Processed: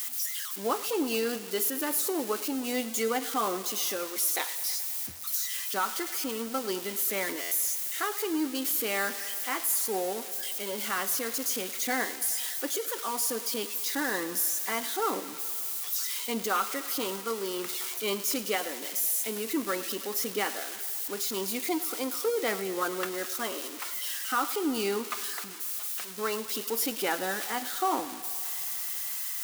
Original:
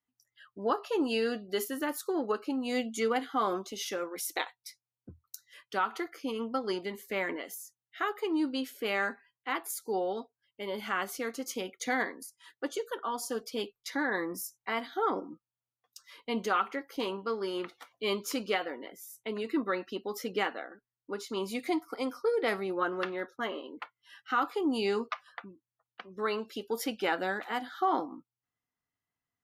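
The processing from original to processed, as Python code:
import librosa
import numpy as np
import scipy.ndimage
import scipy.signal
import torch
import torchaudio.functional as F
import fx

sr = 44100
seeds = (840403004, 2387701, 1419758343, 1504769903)

y = x + 0.5 * 10.0 ** (-25.0 / 20.0) * np.diff(np.sign(x), prepend=np.sign(x[:1]))
y = fx.echo_thinned(y, sr, ms=106, feedback_pct=81, hz=220.0, wet_db=-17.0)
y = fx.buffer_glitch(y, sr, at_s=(7.41,), block=512, repeats=8)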